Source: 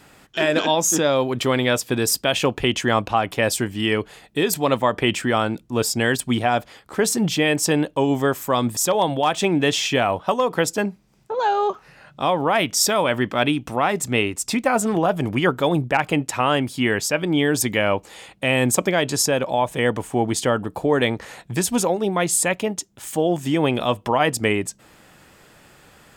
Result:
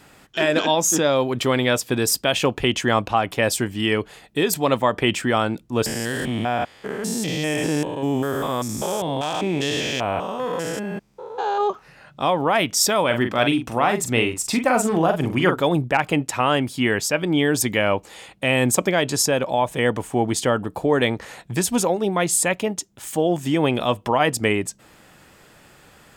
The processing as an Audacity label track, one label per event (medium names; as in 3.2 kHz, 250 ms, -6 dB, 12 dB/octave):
5.860000	11.610000	spectrogram pixelated in time every 200 ms
13.060000	15.620000	doubling 43 ms -7 dB